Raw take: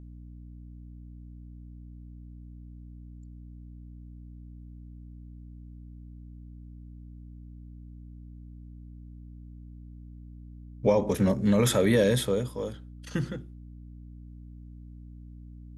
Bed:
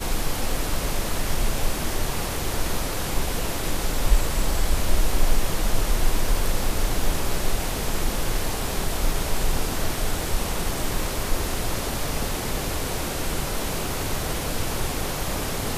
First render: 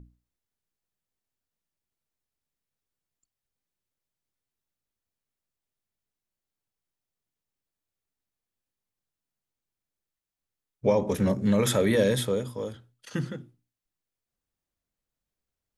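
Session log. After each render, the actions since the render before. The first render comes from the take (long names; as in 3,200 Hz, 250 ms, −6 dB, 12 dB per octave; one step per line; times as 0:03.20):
mains-hum notches 60/120/180/240/300 Hz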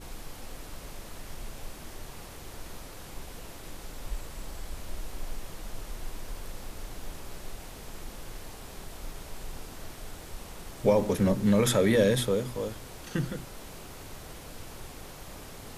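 mix in bed −17 dB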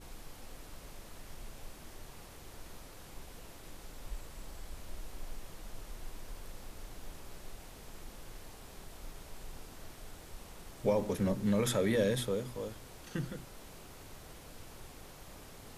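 level −7 dB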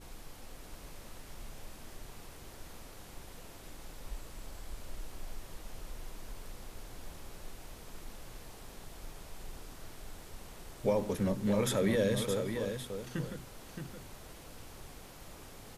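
single-tap delay 620 ms −7 dB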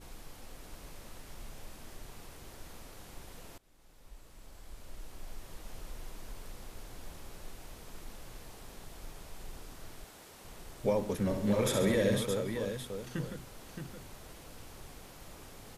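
0:03.58–0:05.72: fade in linear, from −22 dB
0:10.04–0:10.45: high-pass filter 280 Hz 6 dB per octave
0:11.23–0:12.18: flutter between parallel walls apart 11.5 metres, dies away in 0.77 s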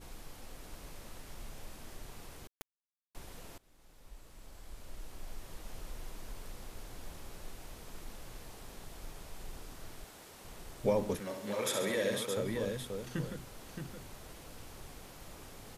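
0:02.47–0:03.15: bit-depth reduction 6 bits, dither none
0:11.18–0:12.36: high-pass filter 1,000 Hz → 460 Hz 6 dB per octave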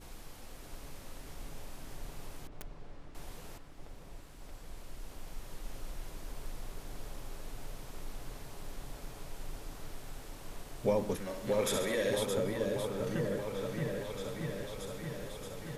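echo whose low-pass opens from repeat to repeat 627 ms, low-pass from 750 Hz, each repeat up 1 octave, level −3 dB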